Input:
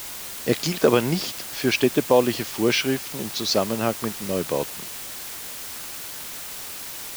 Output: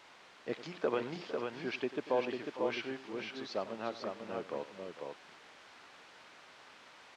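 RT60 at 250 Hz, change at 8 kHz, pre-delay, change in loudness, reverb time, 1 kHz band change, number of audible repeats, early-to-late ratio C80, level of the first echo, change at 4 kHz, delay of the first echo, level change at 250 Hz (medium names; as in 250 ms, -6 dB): no reverb, -30.5 dB, no reverb, -14.5 dB, no reverb, -12.0 dB, 3, no reverb, -15.5 dB, -19.5 dB, 94 ms, -17.0 dB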